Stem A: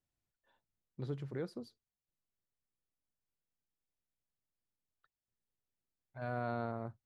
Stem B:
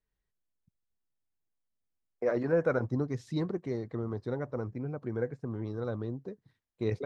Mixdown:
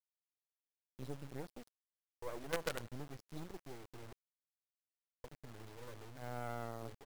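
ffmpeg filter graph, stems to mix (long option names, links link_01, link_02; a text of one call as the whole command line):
ffmpeg -i stem1.wav -i stem2.wav -filter_complex "[0:a]aecho=1:1:7:0.35,volume=-5dB,asplit=2[link_01][link_02];[1:a]equalizer=frequency=210:width=4.9:gain=-7,volume=-11dB,asplit=3[link_03][link_04][link_05];[link_03]atrim=end=4.13,asetpts=PTS-STARTPTS,afade=type=out:start_time=4.126:duration=0.004:curve=hsin[link_06];[link_04]atrim=start=4.13:end=5.24,asetpts=PTS-STARTPTS,volume=0[link_07];[link_05]atrim=start=5.24,asetpts=PTS-STARTPTS,afade=type=in:duration=0.004:curve=hsin[link_08];[link_06][link_07][link_08]concat=n=3:v=0:a=1,asplit=2[link_09][link_10];[link_10]volume=-23.5dB[link_11];[link_02]apad=whole_len=311111[link_12];[link_09][link_12]sidechaincompress=threshold=-50dB:ratio=3:attack=16:release=639[link_13];[link_11]aecho=0:1:182|364|546|728|910|1092:1|0.44|0.194|0.0852|0.0375|0.0165[link_14];[link_01][link_13][link_14]amix=inputs=3:normalize=0,acrusher=bits=6:dc=4:mix=0:aa=0.000001" out.wav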